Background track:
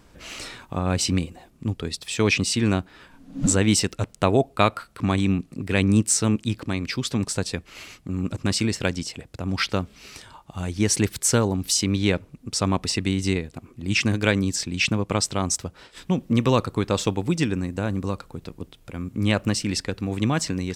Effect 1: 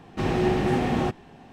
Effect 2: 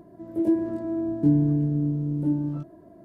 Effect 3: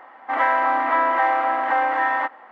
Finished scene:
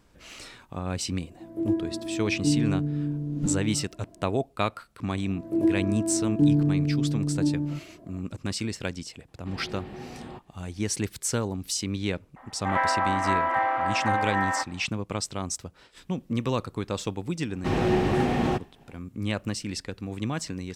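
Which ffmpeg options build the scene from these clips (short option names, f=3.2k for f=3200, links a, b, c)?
-filter_complex "[2:a]asplit=2[a][b];[1:a]asplit=2[c][d];[0:a]volume=-7.5dB[e];[c]aresample=11025,aresample=44100[f];[d]agate=range=-33dB:threshold=-43dB:ratio=3:release=100:detection=peak[g];[a]atrim=end=3.04,asetpts=PTS-STARTPTS,volume=-4dB,afade=t=in:d=0.004:c=hsin,afade=t=out:st=3.036:d=0.004:c=hsin,adelay=1210[h];[b]atrim=end=3.04,asetpts=PTS-STARTPTS,volume=-0.5dB,afade=t=in:d=0.004:c=hsin,afade=t=out:st=3.036:d=0.004:c=hsin,adelay=5160[i];[f]atrim=end=1.52,asetpts=PTS-STARTPTS,volume=-17dB,afade=t=in:d=0.004:c=hsin,afade=t=out:st=1.516:d=0.004:c=hsin,adelay=9280[j];[3:a]atrim=end=2.51,asetpts=PTS-STARTPTS,volume=-5.5dB,afade=t=in:d=0.004:c=hsin,afade=t=out:st=2.506:d=0.004:c=hsin,adelay=545076S[k];[g]atrim=end=1.52,asetpts=PTS-STARTPTS,volume=-0.5dB,afade=t=in:d=0.004:c=hsin,afade=t=out:st=1.516:d=0.004:c=hsin,adelay=17470[l];[e][h][i][j][k][l]amix=inputs=6:normalize=0"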